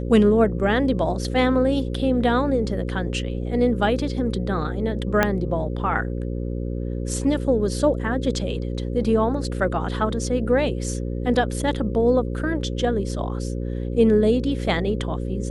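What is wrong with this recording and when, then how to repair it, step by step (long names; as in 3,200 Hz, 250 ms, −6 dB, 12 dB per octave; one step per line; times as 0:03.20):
mains buzz 60 Hz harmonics 9 −27 dBFS
0:05.23: click −4 dBFS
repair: click removal
hum removal 60 Hz, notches 9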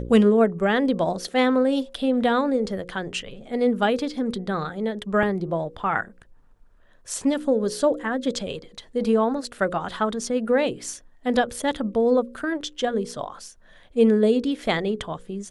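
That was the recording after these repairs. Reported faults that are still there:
0:05.23: click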